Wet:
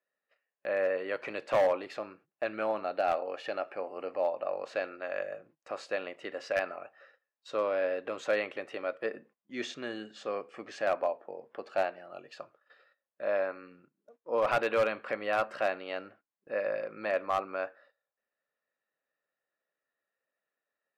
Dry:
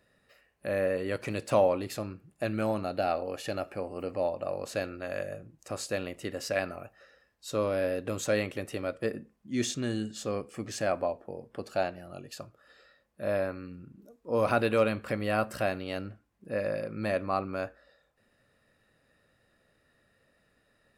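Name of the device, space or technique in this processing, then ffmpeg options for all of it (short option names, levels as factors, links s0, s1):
walkie-talkie: -af "highpass=520,lowpass=2700,asoftclip=type=hard:threshold=0.075,agate=range=0.112:threshold=0.001:ratio=16:detection=peak,equalizer=f=150:w=4.3:g=4.5,volume=1.26"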